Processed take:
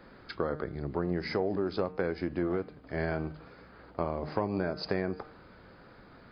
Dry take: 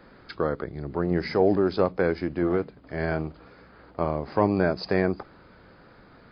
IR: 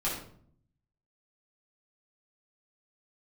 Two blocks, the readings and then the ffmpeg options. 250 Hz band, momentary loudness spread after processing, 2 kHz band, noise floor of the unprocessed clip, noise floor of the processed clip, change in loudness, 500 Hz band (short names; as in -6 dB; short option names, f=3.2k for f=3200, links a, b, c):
-7.0 dB, 13 LU, -6.0 dB, -53 dBFS, -54 dBFS, -7.5 dB, -7.5 dB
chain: -af "bandreject=f=152.8:t=h:w=4,bandreject=f=305.6:t=h:w=4,bandreject=f=458.4:t=h:w=4,bandreject=f=611.2:t=h:w=4,bandreject=f=764:t=h:w=4,bandreject=f=916.8:t=h:w=4,bandreject=f=1.0696k:t=h:w=4,bandreject=f=1.2224k:t=h:w=4,bandreject=f=1.3752k:t=h:w=4,bandreject=f=1.528k:t=h:w=4,bandreject=f=1.6808k:t=h:w=4,bandreject=f=1.8336k:t=h:w=4,bandreject=f=1.9864k:t=h:w=4,bandreject=f=2.1392k:t=h:w=4,bandreject=f=2.292k:t=h:w=4,bandreject=f=2.4448k:t=h:w=4,bandreject=f=2.5976k:t=h:w=4,bandreject=f=2.7504k:t=h:w=4,bandreject=f=2.9032k:t=h:w=4,bandreject=f=3.056k:t=h:w=4,bandreject=f=3.2088k:t=h:w=4,acompressor=threshold=-25dB:ratio=6,volume=-1.5dB"